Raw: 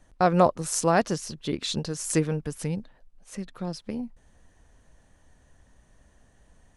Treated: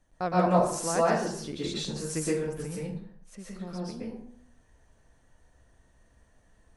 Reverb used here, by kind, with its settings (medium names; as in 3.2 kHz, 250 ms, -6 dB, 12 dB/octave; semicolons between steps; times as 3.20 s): plate-style reverb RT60 0.61 s, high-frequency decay 0.6×, pre-delay 105 ms, DRR -6.5 dB; trim -10 dB